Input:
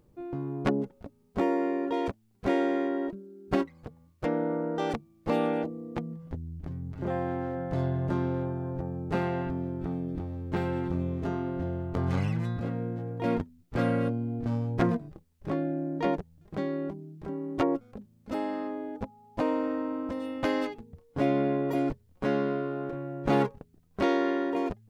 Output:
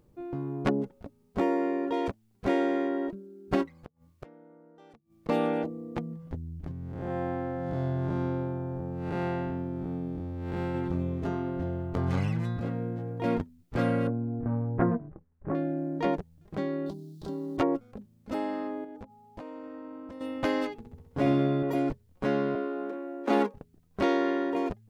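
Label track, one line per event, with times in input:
3.770000	5.290000	gate with flip shuts at −32 dBFS, range −25 dB
6.710000	10.750000	spectrum smeared in time width 212 ms
14.070000	15.550000	low-pass filter 1,700 Hz 24 dB per octave
16.860000	17.570000	high shelf with overshoot 3,000 Hz +10.5 dB, Q 3
18.840000	20.210000	downward compressor 5 to 1, threshold −40 dBFS
20.780000	21.630000	flutter between parallel walls apart 11.2 metres, dies away in 0.78 s
22.550000	23.540000	Butterworth high-pass 190 Hz 96 dB per octave

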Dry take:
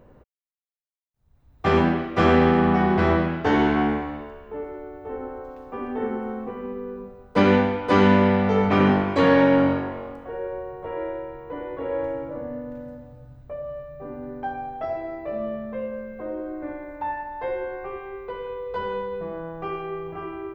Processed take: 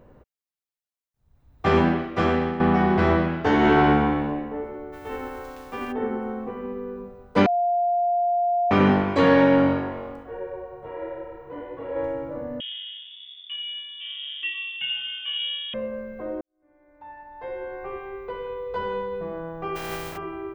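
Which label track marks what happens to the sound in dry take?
1.940000	2.600000	fade out, to −12.5 dB
3.580000	4.230000	thrown reverb, RT60 1.6 s, DRR −3.5 dB
4.920000	5.910000	spectral envelope flattened exponent 0.6
7.460000	8.710000	beep over 701 Hz −19 dBFS
10.220000	11.950000	micro pitch shift up and down each way 27 cents → 41 cents
12.600000	15.740000	voice inversion scrambler carrier 3,500 Hz
16.410000	17.930000	fade in quadratic
19.750000	20.160000	compressing power law on the bin magnitudes exponent 0.4

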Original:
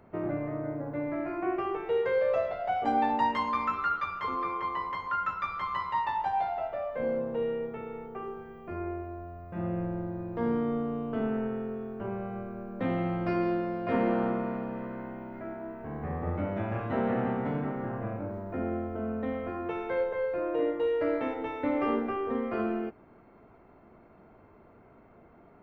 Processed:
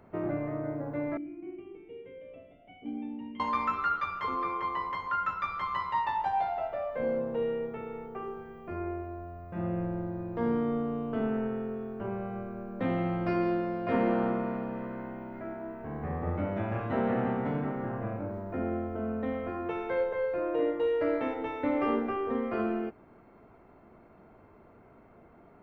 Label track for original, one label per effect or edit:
1.170000	3.400000	formant resonators in series i

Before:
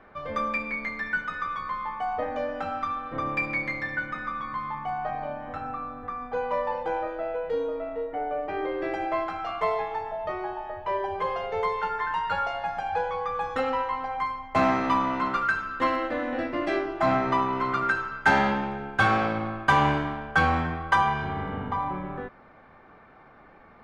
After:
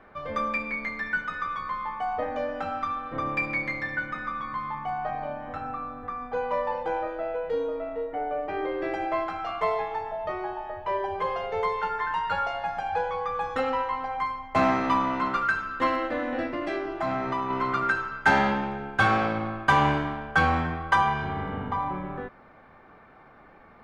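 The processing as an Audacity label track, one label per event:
16.490000	17.500000	downward compressor 2 to 1, threshold −28 dBFS

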